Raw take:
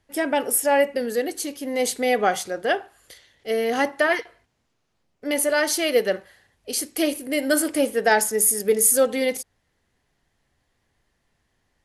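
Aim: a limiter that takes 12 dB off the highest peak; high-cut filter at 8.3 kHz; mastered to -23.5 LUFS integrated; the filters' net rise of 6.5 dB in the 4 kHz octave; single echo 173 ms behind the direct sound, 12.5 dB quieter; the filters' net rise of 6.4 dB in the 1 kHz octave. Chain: low-pass 8.3 kHz; peaking EQ 1 kHz +8.5 dB; peaking EQ 4 kHz +8.5 dB; peak limiter -13.5 dBFS; delay 173 ms -12.5 dB

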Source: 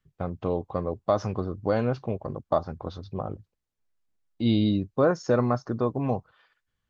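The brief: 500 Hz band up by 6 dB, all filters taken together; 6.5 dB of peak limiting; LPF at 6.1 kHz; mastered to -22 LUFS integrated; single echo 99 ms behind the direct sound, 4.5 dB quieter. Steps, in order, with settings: low-pass 6.1 kHz; peaking EQ 500 Hz +7 dB; peak limiter -12.5 dBFS; delay 99 ms -4.5 dB; trim +3 dB

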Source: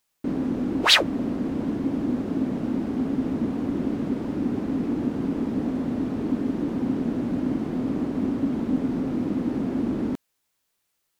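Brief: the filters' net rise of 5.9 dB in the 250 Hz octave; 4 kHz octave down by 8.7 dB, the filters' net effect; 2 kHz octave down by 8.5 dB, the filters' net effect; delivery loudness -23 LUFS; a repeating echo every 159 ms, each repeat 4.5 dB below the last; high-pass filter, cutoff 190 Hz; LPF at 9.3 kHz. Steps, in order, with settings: high-pass 190 Hz; low-pass 9.3 kHz; peaking EQ 250 Hz +8 dB; peaking EQ 2 kHz -9 dB; peaking EQ 4 kHz -7.5 dB; feedback delay 159 ms, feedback 60%, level -4.5 dB; trim -3.5 dB

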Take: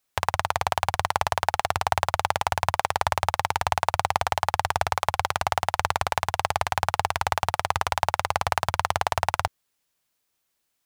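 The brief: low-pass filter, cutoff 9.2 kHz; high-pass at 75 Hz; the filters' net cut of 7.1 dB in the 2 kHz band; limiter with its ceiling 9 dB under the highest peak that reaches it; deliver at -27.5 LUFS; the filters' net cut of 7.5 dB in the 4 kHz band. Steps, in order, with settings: high-pass 75 Hz; low-pass 9.2 kHz; peaking EQ 2 kHz -8 dB; peaking EQ 4 kHz -7 dB; trim +7.5 dB; peak limiter -8.5 dBFS

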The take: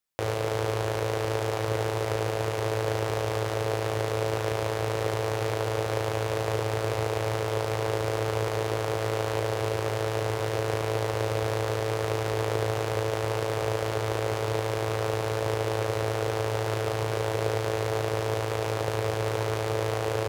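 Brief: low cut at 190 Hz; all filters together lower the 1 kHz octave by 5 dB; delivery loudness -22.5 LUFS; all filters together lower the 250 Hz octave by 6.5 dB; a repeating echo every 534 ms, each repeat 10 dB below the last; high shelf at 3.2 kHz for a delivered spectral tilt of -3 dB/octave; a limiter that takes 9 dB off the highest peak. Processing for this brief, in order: high-pass 190 Hz; peaking EQ 250 Hz -9 dB; peaking EQ 1 kHz -7 dB; treble shelf 3.2 kHz +8.5 dB; peak limiter -18 dBFS; feedback delay 534 ms, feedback 32%, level -10 dB; trim +13 dB

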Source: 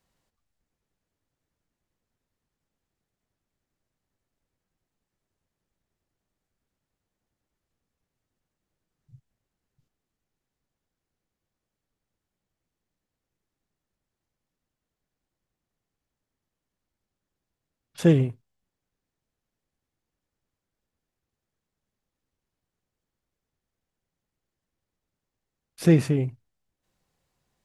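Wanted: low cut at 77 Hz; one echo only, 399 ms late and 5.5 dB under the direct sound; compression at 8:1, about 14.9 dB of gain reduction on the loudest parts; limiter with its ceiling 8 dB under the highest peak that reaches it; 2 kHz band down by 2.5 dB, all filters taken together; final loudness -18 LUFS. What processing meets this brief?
high-pass 77 Hz; peaking EQ 2 kHz -3 dB; compression 8:1, threshold -28 dBFS; peak limiter -25 dBFS; delay 399 ms -5.5 dB; trim +20 dB

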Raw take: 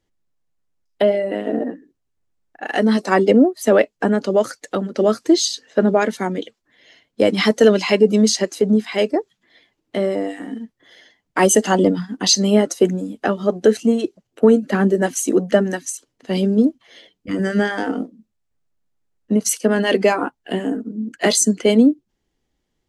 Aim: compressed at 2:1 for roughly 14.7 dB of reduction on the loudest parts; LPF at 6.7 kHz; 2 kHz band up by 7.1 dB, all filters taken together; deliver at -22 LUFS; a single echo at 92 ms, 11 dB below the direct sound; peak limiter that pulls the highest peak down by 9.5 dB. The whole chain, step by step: low-pass 6.7 kHz; peaking EQ 2 kHz +8.5 dB; compression 2:1, threshold -36 dBFS; peak limiter -22.5 dBFS; delay 92 ms -11 dB; trim +11 dB

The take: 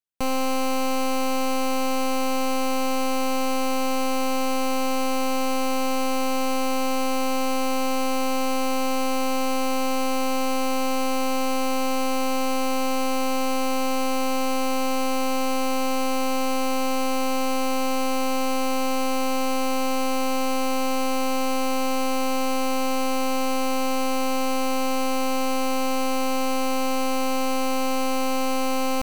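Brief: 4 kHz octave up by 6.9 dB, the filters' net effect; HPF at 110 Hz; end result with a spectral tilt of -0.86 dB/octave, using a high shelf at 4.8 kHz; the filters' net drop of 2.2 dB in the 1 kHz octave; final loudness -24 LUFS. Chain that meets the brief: high-pass 110 Hz; peaking EQ 1 kHz -3.5 dB; peaking EQ 4 kHz +5.5 dB; treble shelf 4.8 kHz +7.5 dB; trim -1 dB

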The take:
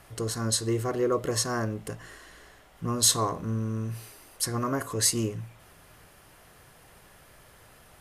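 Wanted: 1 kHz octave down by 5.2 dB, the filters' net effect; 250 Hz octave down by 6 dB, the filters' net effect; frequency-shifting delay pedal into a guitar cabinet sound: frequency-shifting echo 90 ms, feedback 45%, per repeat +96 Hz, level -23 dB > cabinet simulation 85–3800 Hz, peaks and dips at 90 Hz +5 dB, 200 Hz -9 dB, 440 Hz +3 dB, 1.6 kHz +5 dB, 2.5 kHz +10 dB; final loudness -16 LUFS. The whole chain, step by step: peaking EQ 250 Hz -6 dB; peaking EQ 1 kHz -7 dB; frequency-shifting echo 90 ms, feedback 45%, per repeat +96 Hz, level -23 dB; cabinet simulation 85–3800 Hz, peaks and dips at 90 Hz +5 dB, 200 Hz -9 dB, 440 Hz +3 dB, 1.6 kHz +5 dB, 2.5 kHz +10 dB; trim +17 dB

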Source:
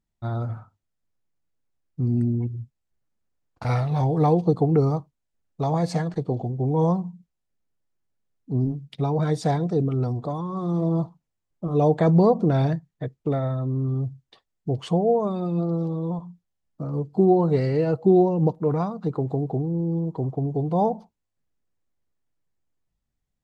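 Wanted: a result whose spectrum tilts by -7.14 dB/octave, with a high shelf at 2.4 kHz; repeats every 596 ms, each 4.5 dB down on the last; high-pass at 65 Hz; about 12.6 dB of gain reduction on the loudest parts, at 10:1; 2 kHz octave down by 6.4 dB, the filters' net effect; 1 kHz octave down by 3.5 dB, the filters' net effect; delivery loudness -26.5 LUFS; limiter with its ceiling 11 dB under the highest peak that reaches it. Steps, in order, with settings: high-pass 65 Hz; peaking EQ 1 kHz -4.5 dB; peaking EQ 2 kHz -8.5 dB; treble shelf 2.4 kHz +4 dB; compression 10:1, threshold -26 dBFS; peak limiter -29 dBFS; feedback delay 596 ms, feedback 60%, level -4.5 dB; trim +10 dB

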